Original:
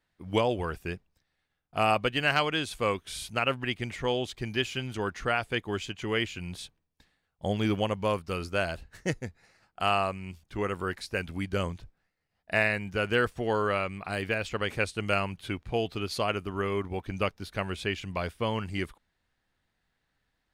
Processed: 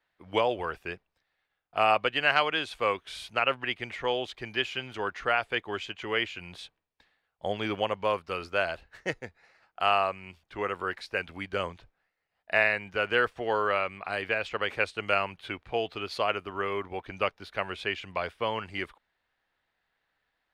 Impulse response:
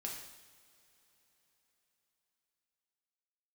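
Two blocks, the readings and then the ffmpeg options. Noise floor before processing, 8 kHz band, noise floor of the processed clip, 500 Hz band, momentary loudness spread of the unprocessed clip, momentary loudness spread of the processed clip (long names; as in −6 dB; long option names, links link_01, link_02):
−79 dBFS, can't be measured, −80 dBFS, 0.0 dB, 9 LU, 11 LU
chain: -filter_complex "[0:a]acrossover=split=410 4200:gain=0.224 1 0.2[link_01][link_02][link_03];[link_01][link_02][link_03]amix=inputs=3:normalize=0,volume=2.5dB"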